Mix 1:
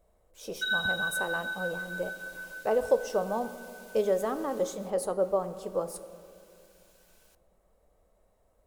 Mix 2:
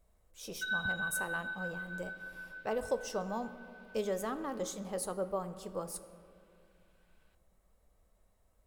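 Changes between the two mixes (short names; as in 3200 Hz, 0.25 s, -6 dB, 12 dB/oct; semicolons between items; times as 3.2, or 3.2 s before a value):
background: add air absorption 390 m; master: add bell 540 Hz -9.5 dB 1.8 oct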